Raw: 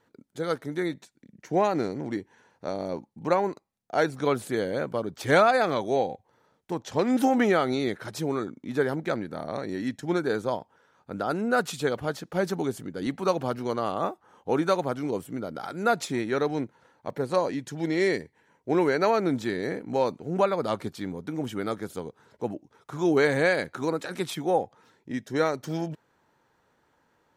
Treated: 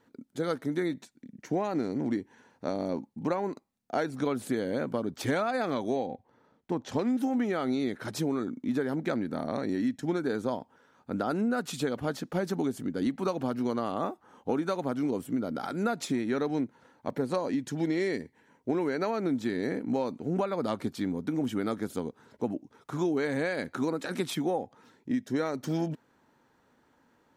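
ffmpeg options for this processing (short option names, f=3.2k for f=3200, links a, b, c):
-filter_complex "[0:a]asettb=1/sr,asplit=3[a][b][c];[a]atrim=end=6.064[d];[b]atrim=start=6.06:end=6.89,asetpts=PTS-STARTPTS,afade=t=in:d=0.004:c=qsin,afade=t=out:st=0.826:d=0.004:c=qsin,lowpass=f=3k:p=1[e];[c]atrim=start=6.886[f];[d][e]acrossfade=d=0.004:c1=hsin:c2=qsin[g];[g][f]acrossfade=d=0.004:c1=qsin:c2=hsin,equalizer=f=250:t=o:w=0.57:g=8.5,acompressor=threshold=-25dB:ratio=12"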